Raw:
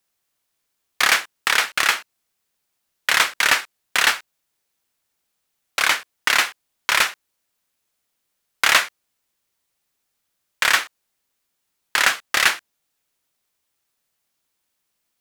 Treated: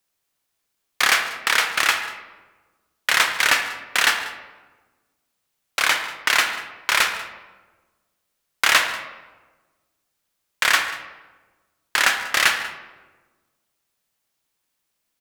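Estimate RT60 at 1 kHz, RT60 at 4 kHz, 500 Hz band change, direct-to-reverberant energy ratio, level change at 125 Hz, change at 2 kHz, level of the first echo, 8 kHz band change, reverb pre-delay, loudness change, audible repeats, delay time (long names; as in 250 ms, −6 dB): 1.2 s, 0.70 s, 0.0 dB, 6.5 dB, can't be measured, 0.0 dB, −19.0 dB, −1.0 dB, 31 ms, −0.5 dB, 2, 145 ms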